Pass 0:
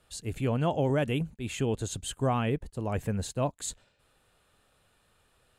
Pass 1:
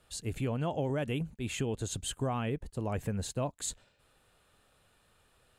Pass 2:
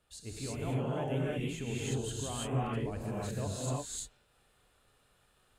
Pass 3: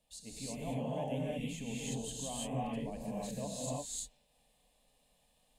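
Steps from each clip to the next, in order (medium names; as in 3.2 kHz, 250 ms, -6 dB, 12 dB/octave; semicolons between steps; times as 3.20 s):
compression 3:1, threshold -30 dBFS, peak gain reduction 6.5 dB
gated-style reverb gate 370 ms rising, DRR -6 dB; trim -8.5 dB
static phaser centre 370 Hz, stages 6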